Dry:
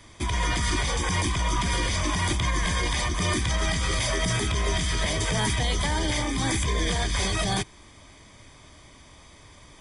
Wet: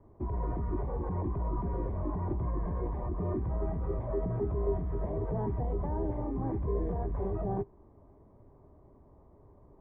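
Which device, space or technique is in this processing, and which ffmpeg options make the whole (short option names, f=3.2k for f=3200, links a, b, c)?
under water: -af "lowpass=f=880:w=0.5412,lowpass=f=880:w=1.3066,equalizer=f=400:t=o:w=0.22:g=9,volume=-6dB"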